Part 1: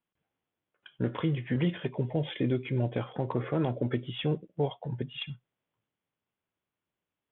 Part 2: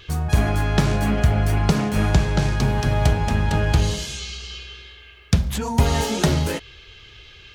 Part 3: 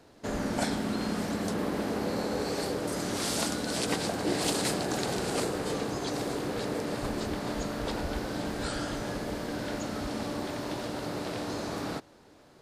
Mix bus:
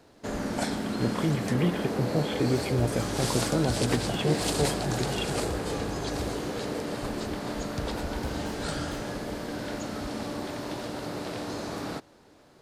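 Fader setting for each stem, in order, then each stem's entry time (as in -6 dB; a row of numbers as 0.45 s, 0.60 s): +2.0 dB, -18.5 dB, 0.0 dB; 0.00 s, 2.45 s, 0.00 s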